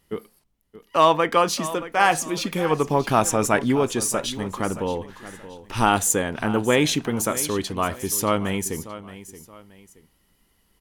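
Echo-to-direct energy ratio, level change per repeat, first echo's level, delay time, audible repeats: -14.5 dB, -9.5 dB, -15.0 dB, 625 ms, 2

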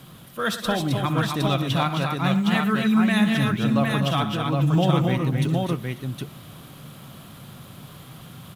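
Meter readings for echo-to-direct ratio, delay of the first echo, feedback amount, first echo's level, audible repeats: 0.0 dB, 64 ms, no regular repeats, -14.5 dB, 5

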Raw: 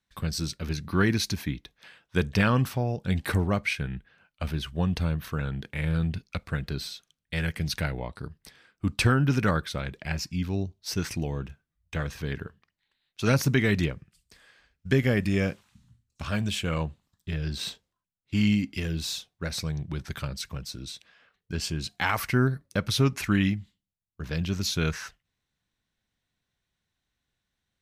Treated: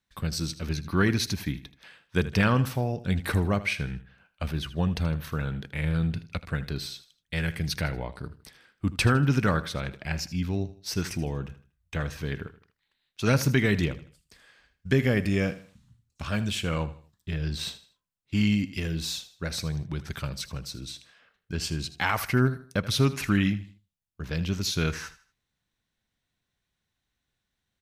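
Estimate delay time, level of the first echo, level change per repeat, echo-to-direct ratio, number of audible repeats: 79 ms, -15.5 dB, -9.0 dB, -15.0 dB, 3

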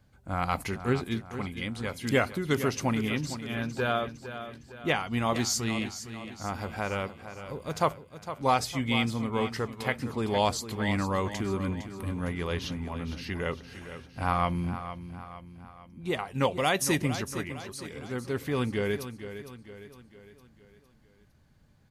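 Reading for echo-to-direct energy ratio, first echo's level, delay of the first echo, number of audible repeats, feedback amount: -10.5 dB, -11.5 dB, 458 ms, 4, 49%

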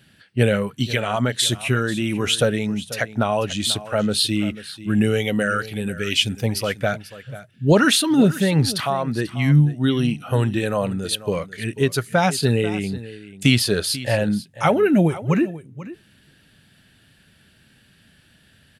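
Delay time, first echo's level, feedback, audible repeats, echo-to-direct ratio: 490 ms, -16.0 dB, no regular repeats, 1, -16.0 dB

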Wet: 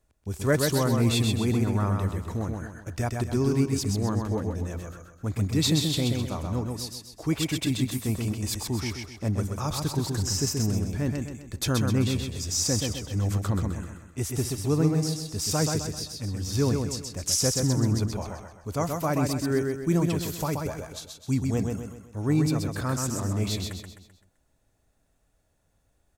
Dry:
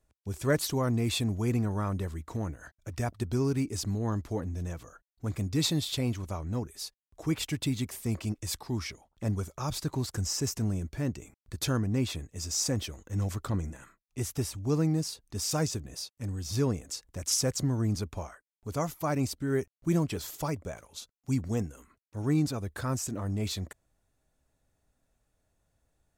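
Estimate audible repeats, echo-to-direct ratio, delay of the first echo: 5, -3.0 dB, 129 ms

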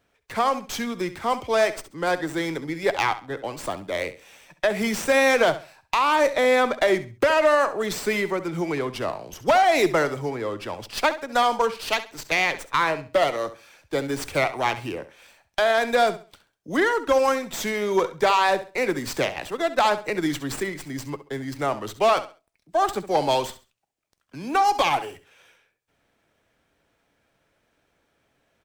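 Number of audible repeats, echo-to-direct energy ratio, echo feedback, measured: 2, -13.5 dB, 26%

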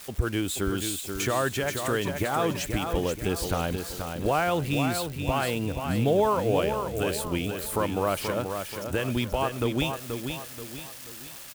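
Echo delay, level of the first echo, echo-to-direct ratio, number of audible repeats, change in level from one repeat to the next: 481 ms, -6.5 dB, -5.5 dB, 4, -7.5 dB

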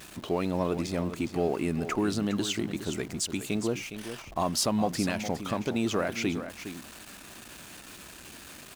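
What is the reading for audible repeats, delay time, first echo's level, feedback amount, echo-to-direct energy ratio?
1, 412 ms, -10.5 dB, no regular repeats, -10.5 dB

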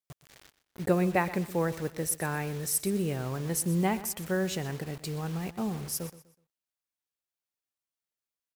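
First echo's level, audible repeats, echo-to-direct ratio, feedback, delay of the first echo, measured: -16.0 dB, 2, -15.5 dB, 31%, 124 ms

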